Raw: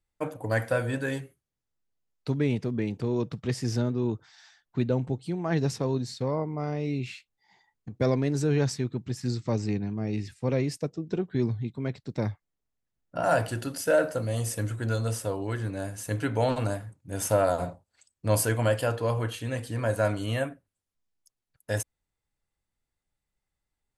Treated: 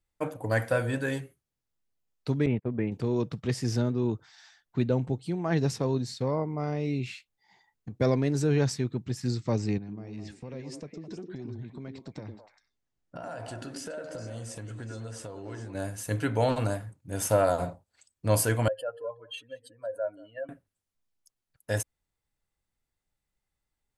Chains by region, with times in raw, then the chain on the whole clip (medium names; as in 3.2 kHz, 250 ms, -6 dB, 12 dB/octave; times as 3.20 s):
2.46–2.92 s: gate -31 dBFS, range -34 dB + low-pass 2.5 kHz 24 dB/octave
9.78–15.75 s: low-pass 8.8 kHz 24 dB/octave + compression, threshold -37 dBFS + repeats whose band climbs or falls 105 ms, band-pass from 300 Hz, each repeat 1.4 oct, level -1 dB
18.68–20.49 s: spectral contrast enhancement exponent 2.3 + high-pass 730 Hz + delay 183 ms -22 dB
whole clip: none